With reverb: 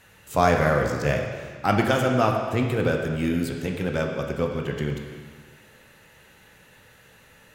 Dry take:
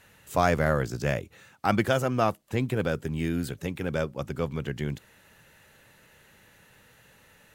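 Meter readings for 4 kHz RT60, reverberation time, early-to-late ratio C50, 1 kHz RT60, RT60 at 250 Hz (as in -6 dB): 1.7 s, 1.8 s, 4.0 dB, 1.8 s, 1.6 s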